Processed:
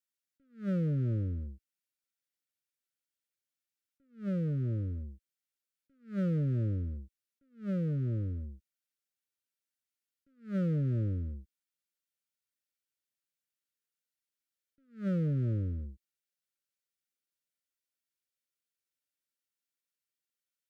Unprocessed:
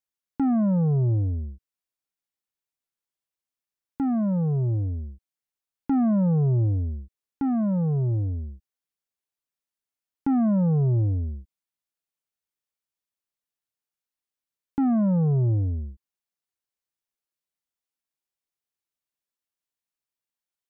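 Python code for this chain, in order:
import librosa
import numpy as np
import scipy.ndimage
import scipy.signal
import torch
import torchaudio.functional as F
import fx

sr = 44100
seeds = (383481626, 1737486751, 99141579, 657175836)

y = fx.low_shelf(x, sr, hz=330.0, db=-6.0)
y = fx.notch_comb(y, sr, f0_hz=420.0)
y = fx.clip_asym(y, sr, top_db=-36.0, bottom_db=-23.5)
y = fx.brickwall_bandstop(y, sr, low_hz=600.0, high_hz=1200.0)
y = fx.attack_slew(y, sr, db_per_s=200.0)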